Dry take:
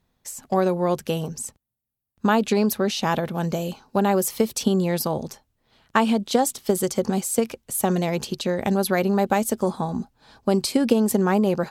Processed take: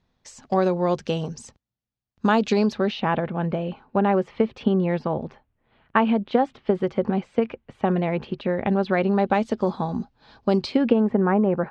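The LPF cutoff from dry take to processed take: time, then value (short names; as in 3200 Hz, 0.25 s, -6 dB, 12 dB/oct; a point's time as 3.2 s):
LPF 24 dB/oct
2.58 s 5800 Hz
3.08 s 2700 Hz
8.52 s 2700 Hz
9.85 s 4900 Hz
10.55 s 4900 Hz
11.11 s 2000 Hz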